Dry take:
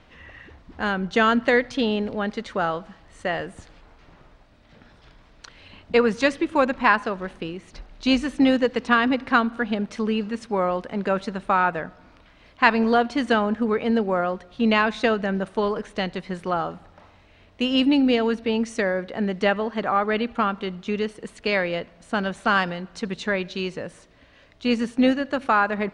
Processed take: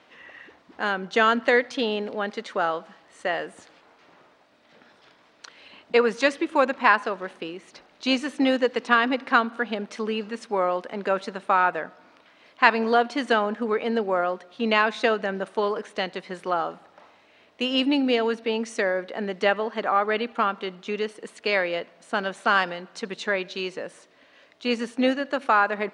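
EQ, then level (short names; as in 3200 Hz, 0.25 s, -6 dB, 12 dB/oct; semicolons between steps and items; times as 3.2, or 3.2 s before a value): HPF 310 Hz 12 dB/oct; 0.0 dB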